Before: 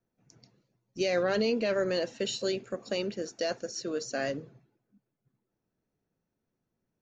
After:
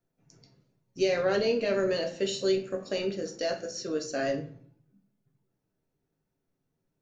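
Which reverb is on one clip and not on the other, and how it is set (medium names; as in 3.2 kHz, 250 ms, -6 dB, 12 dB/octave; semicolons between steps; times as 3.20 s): simulated room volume 44 m³, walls mixed, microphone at 0.45 m; trim -1 dB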